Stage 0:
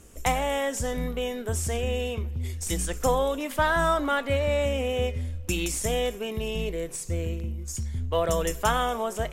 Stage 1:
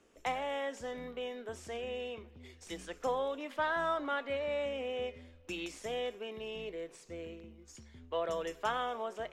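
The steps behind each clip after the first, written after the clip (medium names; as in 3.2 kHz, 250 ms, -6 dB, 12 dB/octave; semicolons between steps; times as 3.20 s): three-band isolator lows -18 dB, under 230 Hz, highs -20 dB, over 5.1 kHz; trim -9 dB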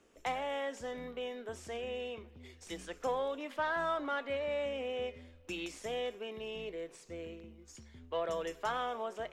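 saturation -22.5 dBFS, distortion -23 dB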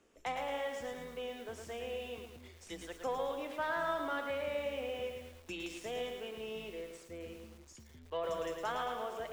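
bit-crushed delay 110 ms, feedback 55%, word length 9-bit, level -5 dB; trim -2.5 dB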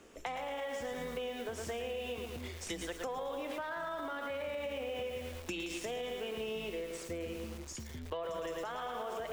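peak limiter -34.5 dBFS, peak gain reduction 10.5 dB; compression 6:1, threshold -48 dBFS, peak gain reduction 9.5 dB; trim +11.5 dB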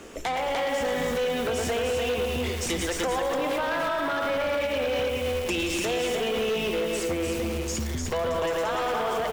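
on a send: delay 298 ms -4.5 dB; on the sum: sine folder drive 10 dB, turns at -22.5 dBFS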